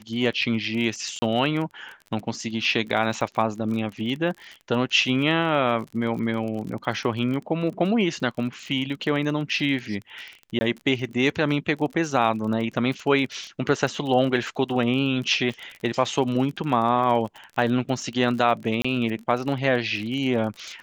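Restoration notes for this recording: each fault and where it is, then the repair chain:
crackle 33 per s -31 dBFS
1.19–1.22 s: dropout 30 ms
10.59–10.61 s: dropout 20 ms
18.82–18.84 s: dropout 25 ms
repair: de-click; interpolate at 1.19 s, 30 ms; interpolate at 10.59 s, 20 ms; interpolate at 18.82 s, 25 ms

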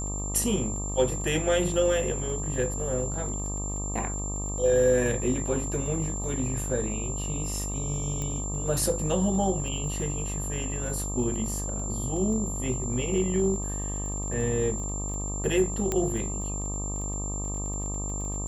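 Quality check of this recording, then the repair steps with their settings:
buzz 50 Hz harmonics 25 -33 dBFS
crackle 23 per s -37 dBFS
whine 7.3 kHz -34 dBFS
8.22 s: pop -20 dBFS
15.92 s: pop -13 dBFS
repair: de-click; band-stop 7.3 kHz, Q 30; de-hum 50 Hz, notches 25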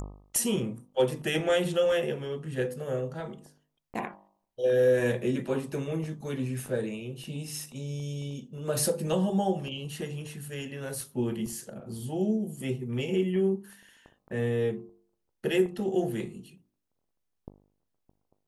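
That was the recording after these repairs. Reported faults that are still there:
nothing left

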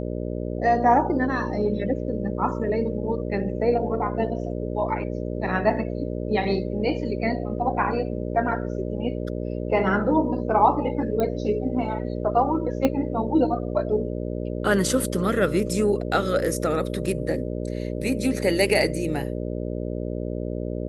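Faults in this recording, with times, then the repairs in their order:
buzz 60 Hz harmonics 10 -29 dBFS
11.20 s: pop -14 dBFS
12.85 s: pop -9 dBFS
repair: de-click; de-hum 60 Hz, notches 10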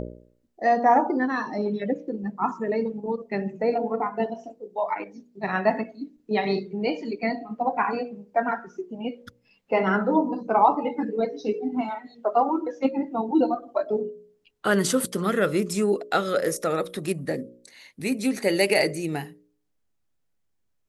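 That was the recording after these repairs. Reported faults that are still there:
12.85 s: pop

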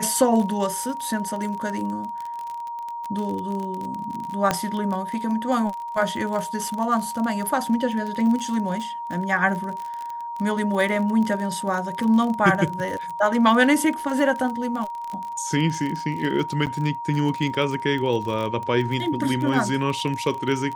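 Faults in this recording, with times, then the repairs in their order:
crackle 36 per s -27 dBFS
whine 940 Hz -29 dBFS
4.51 s: pop -6 dBFS
16.66–16.67 s: dropout 8.1 ms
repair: de-click; band-stop 940 Hz, Q 30; interpolate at 16.66 s, 8.1 ms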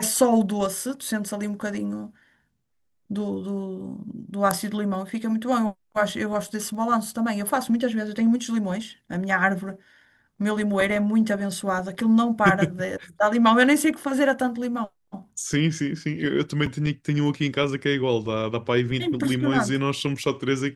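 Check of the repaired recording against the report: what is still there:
4.51 s: pop

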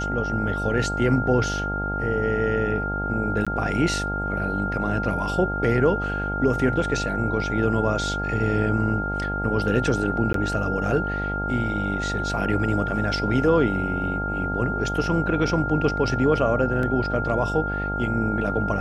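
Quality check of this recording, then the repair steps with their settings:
buzz 50 Hz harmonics 18 -29 dBFS
whine 1.4 kHz -27 dBFS
3.45–3.47 s: dropout 16 ms
10.33–10.34 s: dropout 13 ms
16.83 s: dropout 2 ms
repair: de-hum 50 Hz, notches 18; band-stop 1.4 kHz, Q 30; interpolate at 3.45 s, 16 ms; interpolate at 10.33 s, 13 ms; interpolate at 16.83 s, 2 ms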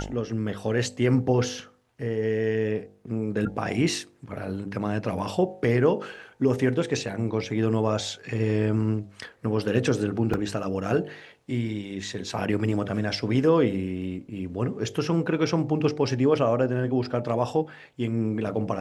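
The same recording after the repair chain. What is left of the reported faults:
nothing left

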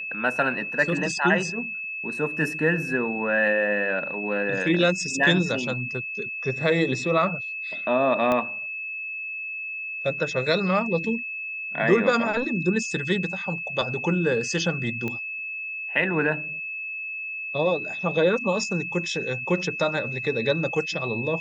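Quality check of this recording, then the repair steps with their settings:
whine 2.6 kHz -30 dBFS
8.32 s: pop -12 dBFS
15.08 s: pop -17 dBFS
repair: de-click; band-stop 2.6 kHz, Q 30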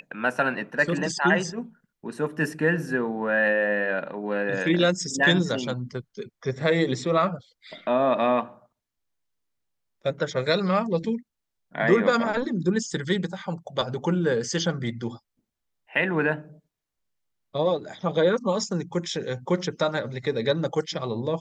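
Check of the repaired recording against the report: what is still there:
8.32 s: pop

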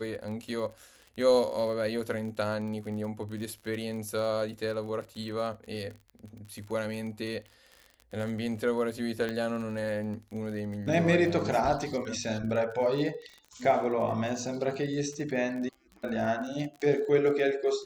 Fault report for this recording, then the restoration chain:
crackle 36 per s -38 dBFS
9.29 s: pop -20 dBFS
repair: de-click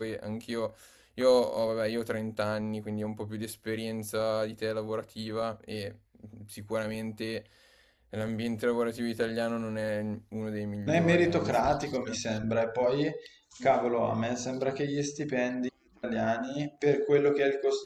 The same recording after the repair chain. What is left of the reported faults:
9.29 s: pop

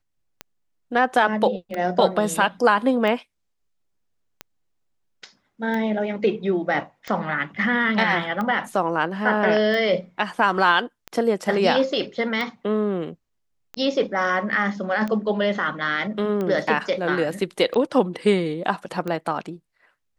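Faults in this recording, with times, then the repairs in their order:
tick 45 rpm -16 dBFS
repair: de-click

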